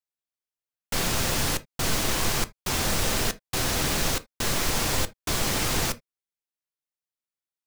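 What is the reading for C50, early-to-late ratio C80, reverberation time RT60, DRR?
22.0 dB, 35.0 dB, non-exponential decay, 11.5 dB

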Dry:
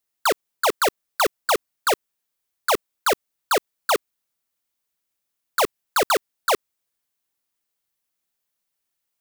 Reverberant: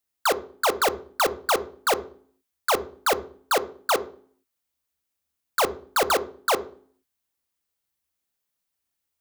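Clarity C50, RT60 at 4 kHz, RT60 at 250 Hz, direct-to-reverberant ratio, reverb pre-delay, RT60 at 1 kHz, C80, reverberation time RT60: 16.5 dB, 0.40 s, 0.85 s, 11.5 dB, 3 ms, 0.45 s, 21.0 dB, 0.50 s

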